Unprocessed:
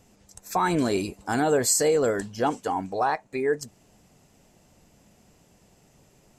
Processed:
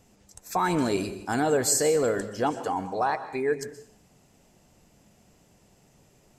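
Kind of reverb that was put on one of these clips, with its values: plate-style reverb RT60 0.58 s, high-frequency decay 0.9×, pre-delay 110 ms, DRR 12 dB; trim -1.5 dB

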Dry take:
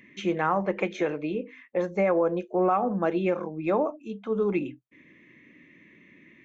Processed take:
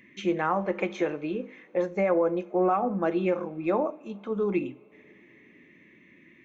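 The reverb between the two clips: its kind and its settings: two-slope reverb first 0.34 s, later 3.9 s, from -21 dB, DRR 13.5 dB; trim -1.5 dB

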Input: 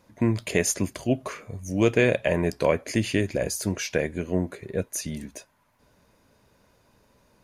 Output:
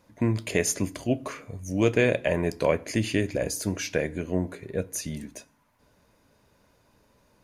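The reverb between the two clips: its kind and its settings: FDN reverb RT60 0.58 s, low-frequency decay 1.4×, high-frequency decay 0.75×, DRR 17 dB; trim -1.5 dB

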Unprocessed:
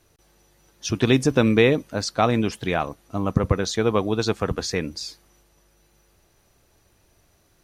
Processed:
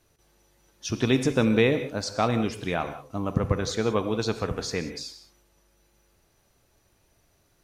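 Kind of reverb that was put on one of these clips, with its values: gated-style reverb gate 210 ms flat, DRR 9 dB; trim -4.5 dB

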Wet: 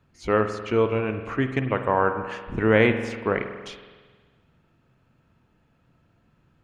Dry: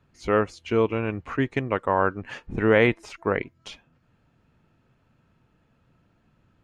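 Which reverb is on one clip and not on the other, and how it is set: spring tank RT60 1.5 s, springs 46 ms, chirp 35 ms, DRR 7.5 dB

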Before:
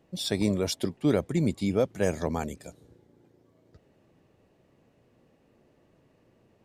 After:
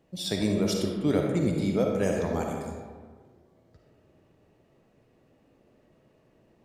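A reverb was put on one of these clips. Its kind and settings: algorithmic reverb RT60 1.6 s, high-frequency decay 0.45×, pre-delay 15 ms, DRR 0.5 dB; trim -2 dB

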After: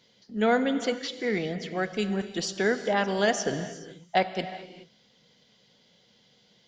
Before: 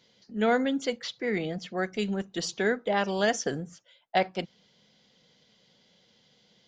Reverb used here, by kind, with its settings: gated-style reverb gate 450 ms flat, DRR 10 dB; trim +1 dB

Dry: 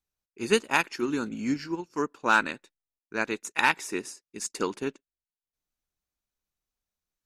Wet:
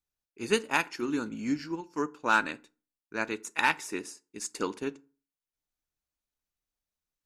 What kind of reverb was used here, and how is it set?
FDN reverb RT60 0.37 s, low-frequency decay 1.1×, high-frequency decay 0.65×, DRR 14.5 dB; trim -3 dB

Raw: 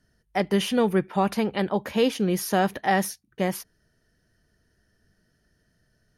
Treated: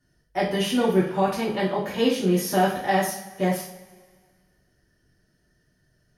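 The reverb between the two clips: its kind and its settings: two-slope reverb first 0.44 s, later 1.8 s, from -18 dB, DRR -6.5 dB; trim -6.5 dB

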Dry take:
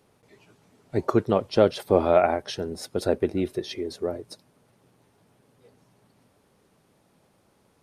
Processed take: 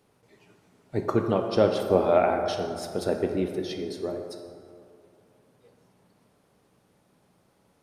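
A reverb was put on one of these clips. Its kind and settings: plate-style reverb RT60 2.4 s, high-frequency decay 0.45×, DRR 3.5 dB; trim -3 dB

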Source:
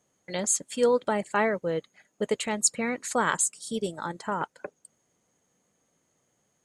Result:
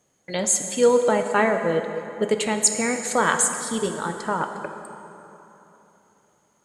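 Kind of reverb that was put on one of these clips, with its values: plate-style reverb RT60 3.3 s, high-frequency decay 0.65×, DRR 5.5 dB; trim +4.5 dB

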